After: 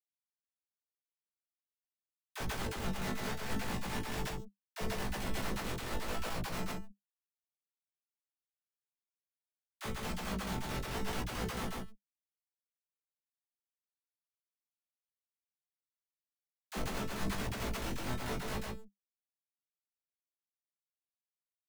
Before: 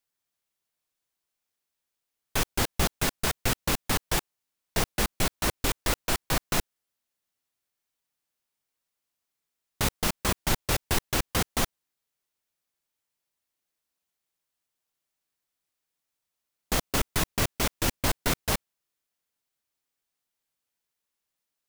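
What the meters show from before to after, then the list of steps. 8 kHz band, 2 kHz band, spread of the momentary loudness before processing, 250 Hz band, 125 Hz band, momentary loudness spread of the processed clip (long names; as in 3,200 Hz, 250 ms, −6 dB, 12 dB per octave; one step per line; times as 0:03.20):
−15.5 dB, −10.0 dB, 3 LU, −6.5 dB, −8.5 dB, 8 LU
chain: brickwall limiter −16 dBFS, peak gain reduction 4.5 dB
chorus effect 0.8 Hz, delay 17 ms, depth 7.3 ms
high-shelf EQ 4,000 Hz −10 dB
tuned comb filter 220 Hz, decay 0.49 s, harmonics all, mix 70%
dead-zone distortion −55 dBFS
single-tap delay 137 ms −4 dB
leveller curve on the samples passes 1
parametric band 200 Hz +9 dB 0.21 octaves
double-tracking delay 16 ms −5 dB
all-pass dispersion lows, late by 52 ms, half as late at 470 Hz
level that may fall only so fast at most 74 dB per second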